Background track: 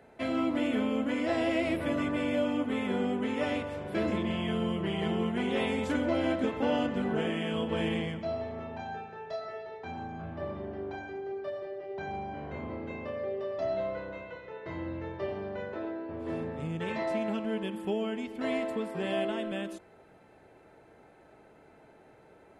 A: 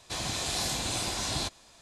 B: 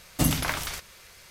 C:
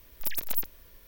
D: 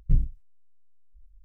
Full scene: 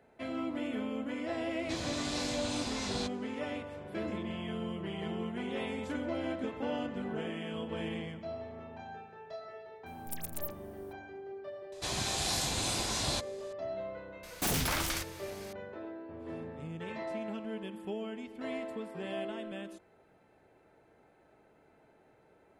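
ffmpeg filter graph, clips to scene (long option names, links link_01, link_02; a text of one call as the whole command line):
ffmpeg -i bed.wav -i cue0.wav -i cue1.wav -i cue2.wav -filter_complex "[1:a]asplit=2[link_01][link_02];[0:a]volume=-7dB[link_03];[link_01]lowpass=6900[link_04];[3:a]equalizer=frequency=8900:width_type=o:width=0.45:gain=14[link_05];[2:a]aeval=exprs='0.0562*(abs(mod(val(0)/0.0562+3,4)-2)-1)':channel_layout=same[link_06];[link_04]atrim=end=1.81,asetpts=PTS-STARTPTS,volume=-6dB,afade=type=in:duration=0.004:curve=hsin,afade=type=out:start_time=1.806:duration=0.004:curve=hsin,adelay=1590[link_07];[link_05]atrim=end=1.07,asetpts=PTS-STARTPTS,volume=-12dB,afade=type=in:duration=0.004:curve=hsin,afade=type=out:start_time=1.066:duration=0.004:curve=hsin,adelay=434826S[link_08];[link_02]atrim=end=1.81,asetpts=PTS-STARTPTS,volume=-1.5dB,afade=type=in:duration=0.004:curve=hsin,afade=type=out:start_time=1.806:duration=0.004:curve=hsin,adelay=11720[link_09];[link_06]atrim=end=1.3,asetpts=PTS-STARTPTS,volume=-0.5dB,afade=type=in:duration=0.004:curve=hsin,afade=type=out:start_time=1.296:duration=0.004:curve=hsin,adelay=14230[link_10];[link_03][link_07][link_08][link_09][link_10]amix=inputs=5:normalize=0" out.wav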